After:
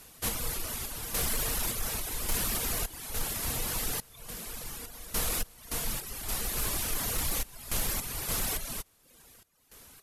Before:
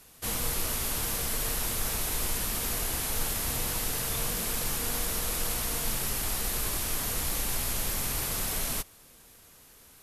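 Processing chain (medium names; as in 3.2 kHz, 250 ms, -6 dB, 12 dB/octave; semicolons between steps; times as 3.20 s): random-step tremolo, depth 85%; sine folder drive 3 dB, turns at -18.5 dBFS; reverb removal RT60 0.83 s; trim -3 dB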